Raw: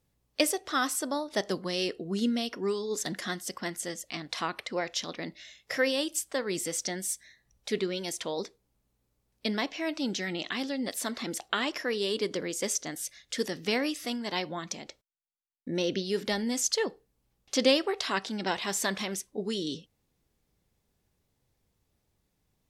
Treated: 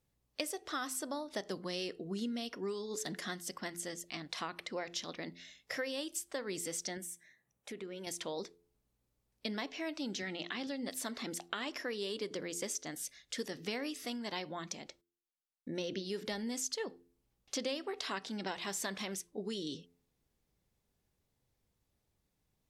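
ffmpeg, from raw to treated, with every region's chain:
ffmpeg -i in.wav -filter_complex "[0:a]asettb=1/sr,asplit=3[link_01][link_02][link_03];[link_01]atrim=end=6.974[link_04];[link_02]atrim=start=6.97:end=8.07,asetpts=PTS-STARTPTS,afade=type=in:duration=0.004:curve=qsin,afade=type=out:start_time=1.096:duration=0.004:curve=qsin,highpass=140,equalizer=frequency=4500:width=1.7:gain=-12.5,acompressor=threshold=-36dB:ratio=4:attack=3.2:release=140:knee=1:detection=peak[link_05];[link_03]atrim=start=8.066[link_06];[link_04][link_05]acrossfade=duration=0.004:curve1=hsin:curve2=qsin[link_07];[link_07][link_06]acrossfade=duration=0.004:curve1=qsin:curve2=hsin,asettb=1/sr,asplit=3[link_08][link_09][link_10];[link_08]atrim=end=10.224[link_11];[link_09]atrim=start=10.22:end=10.67,asetpts=PTS-STARTPTS,afade=type=in:duration=0.004:curve=qsin,afade=type=out:start_time=0.446:duration=0.004:curve=qsin,acrusher=bits=8:mode=log:mix=0:aa=0.000001,highpass=130,lowpass=5300[link_12];[link_10]atrim=start=10.666[link_13];[link_11][link_12]acrossfade=duration=0.004:curve1=hsin:curve2=qsin[link_14];[link_14][link_13]acrossfade=duration=0.004:curve1=qsin:curve2=hsin,bandreject=frequency=86.32:width_type=h:width=4,bandreject=frequency=172.64:width_type=h:width=4,bandreject=frequency=258.96:width_type=h:width=4,bandreject=frequency=345.28:width_type=h:width=4,bandreject=frequency=431.6:width_type=h:width=4,acompressor=threshold=-30dB:ratio=4,volume=-5dB" out.wav

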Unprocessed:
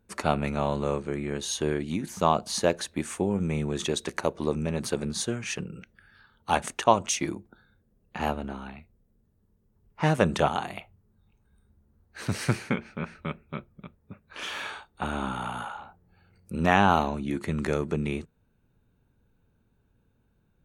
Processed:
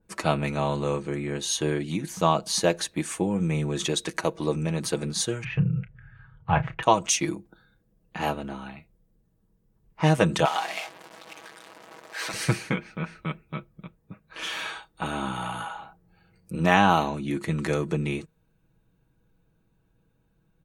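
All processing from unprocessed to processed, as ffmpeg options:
ffmpeg -i in.wav -filter_complex "[0:a]asettb=1/sr,asplit=3[link_01][link_02][link_03];[link_01]atrim=end=5.444[link_04];[link_02]atrim=start=5.44:end=6.83,asetpts=PTS-STARTPTS,afade=type=in:duration=0.004:curve=qsin,afade=type=out:start_time=1.386:duration=0.004:curve=qsin,lowpass=frequency=2400:width=0.5412,lowpass=frequency=2400:width=1.3066,lowshelf=frequency=180:width_type=q:width=3:gain=12,asplit=2[link_05][link_06];[link_06]adelay=32,volume=-14dB[link_07];[link_05][link_07]amix=inputs=2:normalize=0,atrim=end_sample=61299[link_08];[link_03]atrim=start=6.826[link_09];[link_04][link_08]acrossfade=duration=0.004:curve1=hsin:curve2=qsin[link_10];[link_10][link_09]acrossfade=duration=0.004:curve1=qsin:curve2=hsin,asettb=1/sr,asplit=3[link_11][link_12][link_13];[link_11]atrim=end=10.454[link_14];[link_12]atrim=start=10.45:end=12.34,asetpts=PTS-STARTPTS,afade=type=in:duration=0.004:curve=qsin,afade=type=out:start_time=1.886:duration=0.004:curve=qsin,aeval=exprs='val(0)+0.5*0.0266*sgn(val(0))':channel_layout=same,highpass=580,adynamicsmooth=sensitivity=5.5:basefreq=6500[link_15];[link_13]atrim=start=12.336[link_16];[link_14][link_15]acrossfade=duration=0.004:curve1=hsin:curve2=qsin[link_17];[link_17][link_16]acrossfade=duration=0.004:curve1=qsin:curve2=hsin,bandreject=frequency=1400:width=23,aecho=1:1:6.2:0.58,adynamicequalizer=threshold=0.0141:dfrequency=2000:dqfactor=0.7:tfrequency=2000:tqfactor=0.7:attack=5:release=100:ratio=0.375:range=1.5:mode=boostabove:tftype=highshelf" out.wav

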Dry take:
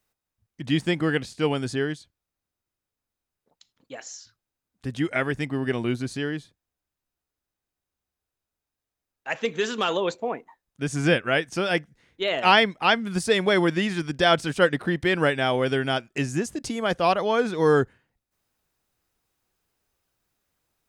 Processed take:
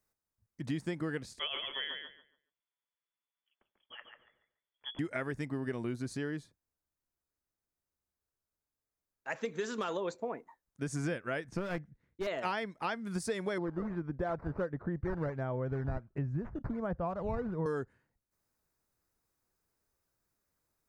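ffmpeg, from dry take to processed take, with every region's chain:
ffmpeg -i in.wav -filter_complex "[0:a]asettb=1/sr,asplit=3[link_01][link_02][link_03];[link_01]atrim=end=1.394[link_04];[link_02]atrim=start=1.39:end=4.99,asetpts=PTS-STARTPTS,afade=type=in:duration=0.004:curve=qsin,afade=type=out:start_time=3.596:duration=0.004:curve=qsin,lowpass=frequency=3000:width_type=q:width=0.5098,lowpass=frequency=3000:width_type=q:width=0.6013,lowpass=frequency=3000:width_type=q:width=0.9,lowpass=frequency=3000:width_type=q:width=2.563,afreqshift=-3500,asplit=2[link_05][link_06];[link_06]adelay=142,lowpass=frequency=2500:poles=1,volume=-4dB,asplit=2[link_07][link_08];[link_08]adelay=142,lowpass=frequency=2500:poles=1,volume=0.27,asplit=2[link_09][link_10];[link_10]adelay=142,lowpass=frequency=2500:poles=1,volume=0.27,asplit=2[link_11][link_12];[link_12]adelay=142,lowpass=frequency=2500:poles=1,volume=0.27[link_13];[link_05][link_07][link_09][link_11][link_13]amix=inputs=5:normalize=0,atrim=end_sample=158760[link_14];[link_03]atrim=start=4.986[link_15];[link_04][link_14]acrossfade=duration=0.004:curve1=hsin:curve2=qsin[link_16];[link_16][link_15]acrossfade=duration=0.004:curve1=qsin:curve2=hsin,asettb=1/sr,asplit=3[link_17][link_18][link_19];[link_17]atrim=end=11.444[link_20];[link_18]atrim=start=11.44:end=12.27,asetpts=PTS-STARTPTS,afade=type=in:duration=0.004:curve=qsin,afade=type=out:start_time=0.826:duration=0.004:curve=qsin,agate=range=-33dB:threshold=-55dB:ratio=3:release=100:detection=peak,bass=frequency=250:gain=9,treble=frequency=4000:gain=-12,aeval=exprs='clip(val(0),-1,0.0422)':channel_layout=same[link_21];[link_19]atrim=start=12.266[link_22];[link_20][link_21]acrossfade=duration=0.004:curve1=hsin:curve2=qsin[link_23];[link_23][link_22]acrossfade=duration=0.004:curve1=qsin:curve2=hsin,asettb=1/sr,asplit=3[link_24][link_25][link_26];[link_24]atrim=end=13.584[link_27];[link_25]atrim=start=13.58:end=17.66,asetpts=PTS-STARTPTS,afade=type=in:duration=0.004:curve=qsin,afade=type=out:start_time=4.076:duration=0.004:curve=qsin,acrusher=samples=8:mix=1:aa=0.000001:lfo=1:lforange=12.8:lforate=1.4,lowpass=1100,asubboost=boost=8:cutoff=120[link_28];[link_26]atrim=start=17.656[link_29];[link_27][link_28]acrossfade=duration=0.004:curve1=hsin:curve2=qsin[link_30];[link_30][link_29]acrossfade=duration=0.004:curve1=qsin:curve2=hsin,equalizer=frequency=3000:width_type=o:width=0.78:gain=-9,acompressor=threshold=-27dB:ratio=5,bandreject=frequency=760:width=13,volume=-5dB" out.wav

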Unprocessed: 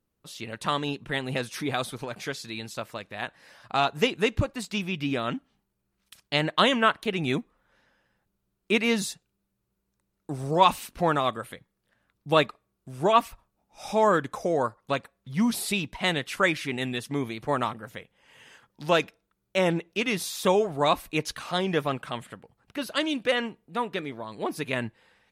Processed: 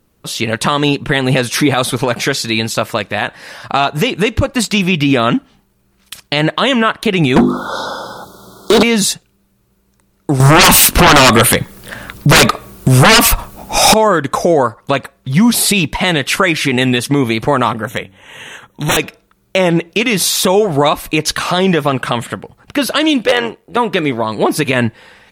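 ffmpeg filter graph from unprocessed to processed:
ffmpeg -i in.wav -filter_complex "[0:a]asettb=1/sr,asplit=3[link_01][link_02][link_03];[link_01]atrim=end=7.364[link_04];[link_02]atrim=start=7.36:end=8.83,asetpts=PTS-STARTPTS,afade=type=in:duration=0.004:curve=qsin,afade=type=out:start_time=1.466:duration=0.004:curve=qsin,asuperstop=centerf=2200:order=20:qfactor=1.2,bandreject=frequency=50:width_type=h:width=6,bandreject=frequency=100:width_type=h:width=6,bandreject=frequency=150:width_type=h:width=6,bandreject=frequency=200:width_type=h:width=6,bandreject=frequency=250:width_type=h:width=6,bandreject=frequency=300:width_type=h:width=6,bandreject=frequency=350:width_type=h:width=6,bandreject=frequency=400:width_type=h:width=6,asplit=2[link_05][link_06];[link_06]highpass=frequency=720:poles=1,volume=37dB,asoftclip=type=tanh:threshold=-12.5dB[link_07];[link_05][link_07]amix=inputs=2:normalize=0,lowpass=frequency=3400:poles=1,volume=-6dB[link_08];[link_03]atrim=start=8.826[link_09];[link_04][link_08]acrossfade=duration=0.004:curve1=hsin:curve2=qsin[link_10];[link_10][link_09]acrossfade=duration=0.004:curve1=qsin:curve2=hsin,asettb=1/sr,asplit=3[link_11][link_12][link_13];[link_11]atrim=end=10.404[link_14];[link_12]atrim=start=10.4:end=13.94,asetpts=PTS-STARTPTS,afade=type=in:duration=0.004:curve=qsin,afade=type=out:start_time=3.536:duration=0.004:curve=qsin,highshelf=frequency=9200:gain=6.5,acompressor=threshold=-26dB:ratio=2.5:attack=3.2:release=140:knee=1:detection=peak,aeval=exprs='0.2*sin(PI/2*7.08*val(0)/0.2)':channel_layout=same[link_15];[link_13]atrim=start=13.936[link_16];[link_14][link_15]acrossfade=duration=0.004:curve1=hsin:curve2=qsin[link_17];[link_17][link_16]acrossfade=duration=0.004:curve1=qsin:curve2=hsin,asettb=1/sr,asplit=3[link_18][link_19][link_20];[link_18]atrim=end=17.834[link_21];[link_19]atrim=start=17.83:end=18.97,asetpts=PTS-STARTPTS,afade=type=in:duration=0.004:curve=qsin,afade=type=out:start_time=1.136:duration=0.004:curve=qsin,bandreject=frequency=95.79:width_type=h:width=4,bandreject=frequency=191.58:width_type=h:width=4,bandreject=frequency=287.37:width_type=h:width=4,aeval=exprs='0.0422*(abs(mod(val(0)/0.0422+3,4)-2)-1)':channel_layout=same,asuperstop=centerf=4800:order=20:qfactor=3.5[link_22];[link_20]atrim=start=18.966[link_23];[link_21][link_22]acrossfade=duration=0.004:curve1=hsin:curve2=qsin[link_24];[link_24][link_23]acrossfade=duration=0.004:curve1=qsin:curve2=hsin,asettb=1/sr,asplit=3[link_25][link_26][link_27];[link_25]atrim=end=23.254[link_28];[link_26]atrim=start=23.25:end=23.77,asetpts=PTS-STARTPTS,afade=type=in:duration=0.004:curve=qsin,afade=type=out:start_time=0.516:duration=0.004:curve=qsin,tremolo=f=93:d=0.667,lowshelf=frequency=300:width_type=q:width=1.5:gain=-7,aeval=exprs='0.141*(abs(mod(val(0)/0.141+3,4)-2)-1)':channel_layout=same[link_29];[link_27]atrim=start=23.766[link_30];[link_28][link_29]acrossfade=duration=0.004:curve1=hsin:curve2=qsin[link_31];[link_31][link_30]acrossfade=duration=0.004:curve1=qsin:curve2=hsin,acompressor=threshold=-26dB:ratio=6,alimiter=level_in=21.5dB:limit=-1dB:release=50:level=0:latency=1,volume=-1dB" out.wav

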